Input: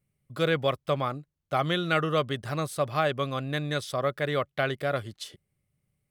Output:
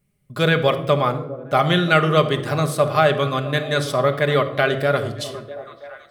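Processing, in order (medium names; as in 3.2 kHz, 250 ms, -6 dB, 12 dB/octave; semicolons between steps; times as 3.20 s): repeats whose band climbs or falls 326 ms, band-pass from 280 Hz, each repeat 0.7 oct, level -10 dB; simulated room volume 2100 m³, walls furnished, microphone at 1.3 m; trim +8 dB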